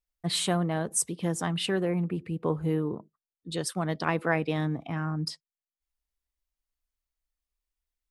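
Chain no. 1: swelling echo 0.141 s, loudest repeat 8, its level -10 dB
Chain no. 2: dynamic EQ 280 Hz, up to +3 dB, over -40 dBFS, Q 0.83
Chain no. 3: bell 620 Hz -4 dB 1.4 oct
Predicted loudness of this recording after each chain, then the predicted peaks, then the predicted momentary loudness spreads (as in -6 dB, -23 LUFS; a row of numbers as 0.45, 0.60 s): -28.0, -28.0, -30.5 LUFS; -9.5, -9.0, -11.5 dBFS; 9, 7, 8 LU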